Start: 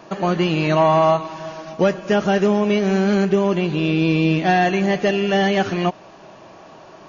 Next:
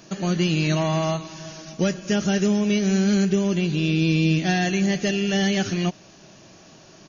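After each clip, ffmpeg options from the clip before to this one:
-af "firequalizer=gain_entry='entry(170,0);entry(310,-4);entry(440,-8);entry(980,-14);entry(1500,-6);entry(5900,8)':delay=0.05:min_phase=1"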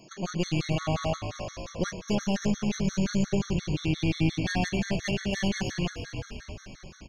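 -filter_complex "[0:a]aeval=exprs='(tanh(7.08*val(0)+0.65)-tanh(0.65))/7.08':c=same,asplit=9[a][b][c][d][e][f][g][h][i];[b]adelay=315,afreqshift=-52,volume=-9dB[j];[c]adelay=630,afreqshift=-104,volume=-12.9dB[k];[d]adelay=945,afreqshift=-156,volume=-16.8dB[l];[e]adelay=1260,afreqshift=-208,volume=-20.6dB[m];[f]adelay=1575,afreqshift=-260,volume=-24.5dB[n];[g]adelay=1890,afreqshift=-312,volume=-28.4dB[o];[h]adelay=2205,afreqshift=-364,volume=-32.3dB[p];[i]adelay=2520,afreqshift=-416,volume=-36.1dB[q];[a][j][k][l][m][n][o][p][q]amix=inputs=9:normalize=0,afftfilt=real='re*gt(sin(2*PI*5.7*pts/sr)*(1-2*mod(floor(b*sr/1024/1100),2)),0)':imag='im*gt(sin(2*PI*5.7*pts/sr)*(1-2*mod(floor(b*sr/1024/1100),2)),0)':win_size=1024:overlap=0.75"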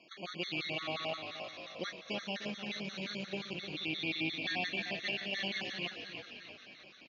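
-filter_complex "[0:a]highpass=390,equalizer=f=410:t=q:w=4:g=-5,equalizer=f=590:t=q:w=4:g=-3,equalizer=f=910:t=q:w=4:g=-7,equalizer=f=1.5k:t=q:w=4:g=-5,equalizer=f=2.3k:t=q:w=4:g=7,equalizer=f=3.7k:t=q:w=4:g=8,lowpass=f=4.3k:w=0.5412,lowpass=f=4.3k:w=1.3066,asplit=2[a][b];[b]aecho=0:1:304|608|912:0.266|0.0798|0.0239[c];[a][c]amix=inputs=2:normalize=0,volume=-4.5dB"

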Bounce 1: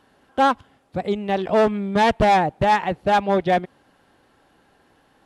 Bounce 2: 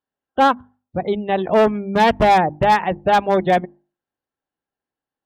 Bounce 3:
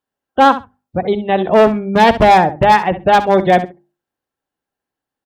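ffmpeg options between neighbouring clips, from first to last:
-af "afftdn=nr=34:nf=-37,aeval=exprs='0.282*(abs(mod(val(0)/0.282+3,4)-2)-1)':c=same,bandreject=f=50:t=h:w=6,bandreject=f=100:t=h:w=6,bandreject=f=150:t=h:w=6,bandreject=f=200:t=h:w=6,bandreject=f=250:t=h:w=6,bandreject=f=300:t=h:w=6,bandreject=f=350:t=h:w=6,volume=3dB"
-af "aecho=1:1:66|132:0.211|0.0317,volume=4.5dB"

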